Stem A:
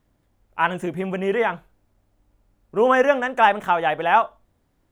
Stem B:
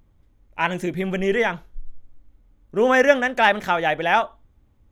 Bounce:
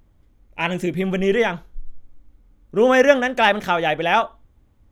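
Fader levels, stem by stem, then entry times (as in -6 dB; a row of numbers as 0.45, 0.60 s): -6.5, +1.5 dB; 0.00, 0.00 s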